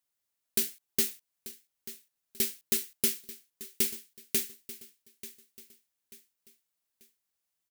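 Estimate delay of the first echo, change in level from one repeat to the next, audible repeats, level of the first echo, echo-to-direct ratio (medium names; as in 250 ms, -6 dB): 888 ms, -8.0 dB, 3, -16.0 dB, -15.5 dB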